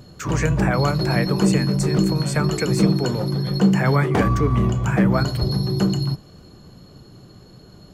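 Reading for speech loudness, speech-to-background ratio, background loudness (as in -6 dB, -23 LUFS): -25.0 LUFS, -4.0 dB, -21.0 LUFS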